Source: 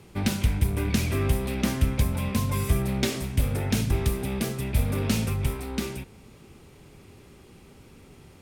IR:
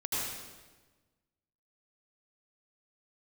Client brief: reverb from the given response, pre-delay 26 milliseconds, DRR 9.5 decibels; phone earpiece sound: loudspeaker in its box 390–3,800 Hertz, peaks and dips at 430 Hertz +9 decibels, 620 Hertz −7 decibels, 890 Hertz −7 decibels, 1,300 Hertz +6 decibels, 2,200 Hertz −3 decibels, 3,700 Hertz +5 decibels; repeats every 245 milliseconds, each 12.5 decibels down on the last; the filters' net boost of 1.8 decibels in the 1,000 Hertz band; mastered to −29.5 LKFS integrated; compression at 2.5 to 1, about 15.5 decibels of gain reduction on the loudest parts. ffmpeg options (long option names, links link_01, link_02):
-filter_complex "[0:a]equalizer=frequency=1000:width_type=o:gain=3,acompressor=threshold=-42dB:ratio=2.5,aecho=1:1:245|490|735:0.237|0.0569|0.0137,asplit=2[link_01][link_02];[1:a]atrim=start_sample=2205,adelay=26[link_03];[link_02][link_03]afir=irnorm=-1:irlink=0,volume=-15.5dB[link_04];[link_01][link_04]amix=inputs=2:normalize=0,highpass=390,equalizer=frequency=430:width_type=q:width=4:gain=9,equalizer=frequency=620:width_type=q:width=4:gain=-7,equalizer=frequency=890:width_type=q:width=4:gain=-7,equalizer=frequency=1300:width_type=q:width=4:gain=6,equalizer=frequency=2200:width_type=q:width=4:gain=-3,equalizer=frequency=3700:width_type=q:width=4:gain=5,lowpass=frequency=3800:width=0.5412,lowpass=frequency=3800:width=1.3066,volume=16dB"